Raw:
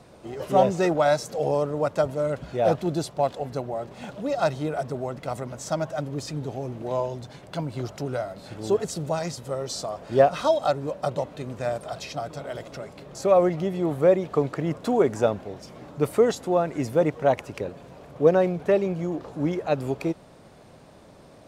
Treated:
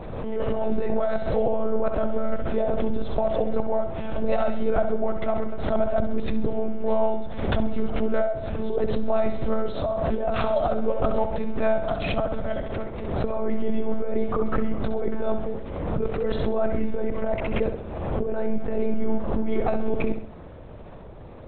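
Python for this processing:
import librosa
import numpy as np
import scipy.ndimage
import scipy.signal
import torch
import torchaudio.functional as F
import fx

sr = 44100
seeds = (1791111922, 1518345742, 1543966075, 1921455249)

p1 = fx.high_shelf(x, sr, hz=2600.0, db=-9.5)
p2 = fx.lpc_monotone(p1, sr, seeds[0], pitch_hz=220.0, order=10)
p3 = fx.low_shelf(p2, sr, hz=300.0, db=4.5)
p4 = fx.over_compress(p3, sr, threshold_db=-24.0, ratio=-1.0)
p5 = p4 + fx.echo_feedback(p4, sr, ms=65, feedback_pct=47, wet_db=-8.0, dry=0)
p6 = fx.pre_swell(p5, sr, db_per_s=36.0)
y = F.gain(torch.from_numpy(p6), 1.5).numpy()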